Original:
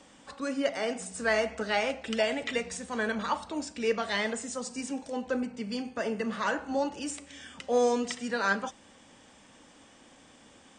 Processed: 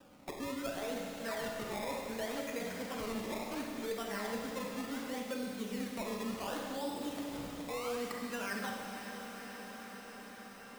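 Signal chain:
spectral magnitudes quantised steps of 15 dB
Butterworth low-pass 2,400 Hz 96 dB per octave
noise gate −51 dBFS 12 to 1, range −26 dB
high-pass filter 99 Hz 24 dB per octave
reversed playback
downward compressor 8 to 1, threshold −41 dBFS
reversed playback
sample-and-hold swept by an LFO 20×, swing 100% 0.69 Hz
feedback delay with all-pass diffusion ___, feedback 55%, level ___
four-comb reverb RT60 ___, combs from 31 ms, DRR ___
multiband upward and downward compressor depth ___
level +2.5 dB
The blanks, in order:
504 ms, −14 dB, 1.5 s, 1 dB, 70%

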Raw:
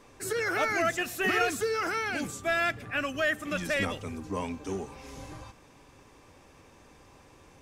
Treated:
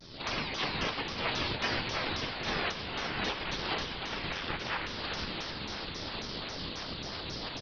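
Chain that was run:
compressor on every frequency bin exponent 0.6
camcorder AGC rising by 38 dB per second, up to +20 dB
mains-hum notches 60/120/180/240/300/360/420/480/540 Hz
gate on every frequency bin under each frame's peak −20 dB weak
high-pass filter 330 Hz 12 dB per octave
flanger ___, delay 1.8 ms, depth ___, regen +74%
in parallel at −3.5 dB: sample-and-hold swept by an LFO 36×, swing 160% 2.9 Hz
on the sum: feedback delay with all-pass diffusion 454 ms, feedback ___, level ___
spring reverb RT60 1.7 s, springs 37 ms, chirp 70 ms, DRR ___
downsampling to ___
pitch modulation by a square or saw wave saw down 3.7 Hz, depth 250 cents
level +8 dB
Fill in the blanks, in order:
0.49 Hz, 8.2 ms, 64%, −7.5 dB, 17.5 dB, 11,025 Hz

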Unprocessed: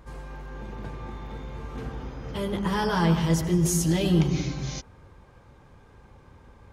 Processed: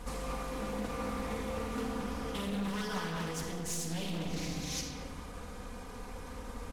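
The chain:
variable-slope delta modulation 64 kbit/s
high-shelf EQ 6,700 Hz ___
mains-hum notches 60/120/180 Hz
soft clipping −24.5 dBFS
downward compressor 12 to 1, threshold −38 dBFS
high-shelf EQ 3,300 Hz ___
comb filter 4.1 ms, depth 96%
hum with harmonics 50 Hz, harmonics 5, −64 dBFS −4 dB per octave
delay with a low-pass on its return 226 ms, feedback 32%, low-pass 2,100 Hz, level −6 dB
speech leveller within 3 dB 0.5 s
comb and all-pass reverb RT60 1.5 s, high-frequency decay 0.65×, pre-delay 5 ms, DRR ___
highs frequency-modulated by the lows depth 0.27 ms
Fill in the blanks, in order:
+2 dB, +6.5 dB, 2.5 dB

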